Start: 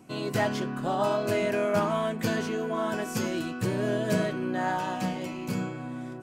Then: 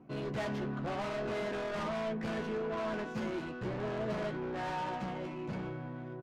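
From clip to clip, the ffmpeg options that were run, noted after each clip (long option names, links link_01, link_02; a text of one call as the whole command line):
ffmpeg -i in.wav -filter_complex "[0:a]aresample=16000,asoftclip=type=hard:threshold=-30.5dB,aresample=44100,adynamicsmooth=sensitivity=5:basefreq=1500,asplit=2[link_01][link_02];[link_02]adelay=14,volume=-6dB[link_03];[link_01][link_03]amix=inputs=2:normalize=0,volume=-3.5dB" out.wav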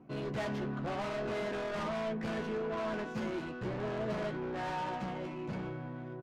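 ffmpeg -i in.wav -af anull out.wav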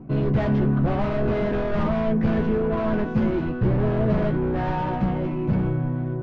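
ffmpeg -i in.wav -af "lowpass=5900,aemphasis=mode=reproduction:type=riaa,areverse,acompressor=mode=upward:threshold=-37dB:ratio=2.5,areverse,volume=8.5dB" out.wav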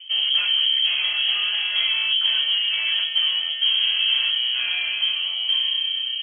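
ffmpeg -i in.wav -af "lowpass=frequency=2800:width_type=q:width=0.5098,lowpass=frequency=2800:width_type=q:width=0.6013,lowpass=frequency=2800:width_type=q:width=0.9,lowpass=frequency=2800:width_type=q:width=2.563,afreqshift=-3300" out.wav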